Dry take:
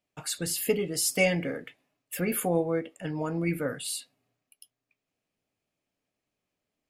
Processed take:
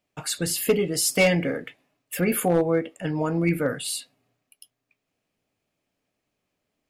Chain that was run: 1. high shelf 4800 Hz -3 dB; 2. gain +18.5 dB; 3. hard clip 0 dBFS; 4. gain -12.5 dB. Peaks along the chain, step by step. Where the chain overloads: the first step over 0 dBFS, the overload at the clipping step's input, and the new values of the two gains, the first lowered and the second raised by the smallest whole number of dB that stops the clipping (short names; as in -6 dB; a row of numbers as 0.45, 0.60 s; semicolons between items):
-12.0, +6.5, 0.0, -12.5 dBFS; step 2, 6.5 dB; step 2 +11.5 dB, step 4 -5.5 dB